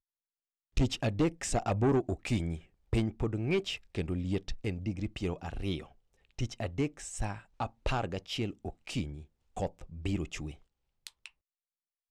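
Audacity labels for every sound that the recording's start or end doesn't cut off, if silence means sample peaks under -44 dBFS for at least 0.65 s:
0.770000	11.260000	sound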